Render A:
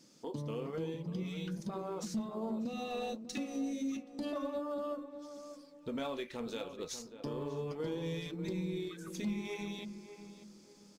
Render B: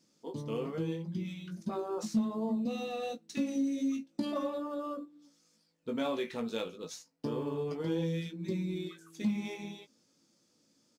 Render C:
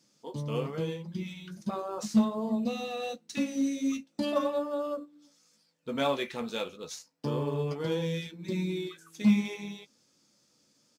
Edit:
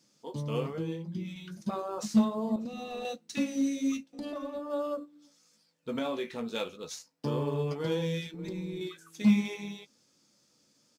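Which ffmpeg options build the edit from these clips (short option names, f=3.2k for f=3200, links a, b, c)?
-filter_complex "[1:a]asplit=2[a][b];[0:a]asplit=3[c][d][e];[2:a]asplit=6[f][g][h][i][j][k];[f]atrim=end=0.732[l];[a]atrim=start=0.728:end=1.362[m];[g]atrim=start=1.358:end=2.562[n];[c]atrim=start=2.558:end=3.052[o];[h]atrim=start=3.048:end=4.132[p];[d]atrim=start=4.128:end=4.702[q];[i]atrim=start=4.698:end=5.992[r];[b]atrim=start=5.988:end=6.552[s];[j]atrim=start=6.548:end=8.342[t];[e]atrim=start=8.338:end=8.812[u];[k]atrim=start=8.808[v];[l][m]acrossfade=d=0.004:c1=hsin:c2=hsin[w];[w][n]acrossfade=d=0.004:c1=hsin:c2=hsin[x];[x][o]acrossfade=d=0.004:c1=hsin:c2=hsin[y];[y][p]acrossfade=d=0.004:c1=hsin:c2=hsin[z];[z][q]acrossfade=d=0.004:c1=hsin:c2=hsin[aa];[aa][r]acrossfade=d=0.004:c1=hsin:c2=hsin[ab];[ab][s]acrossfade=d=0.004:c1=hsin:c2=hsin[ac];[ac][t]acrossfade=d=0.004:c1=hsin:c2=hsin[ad];[ad][u]acrossfade=d=0.004:c1=hsin:c2=hsin[ae];[ae][v]acrossfade=d=0.004:c1=hsin:c2=hsin"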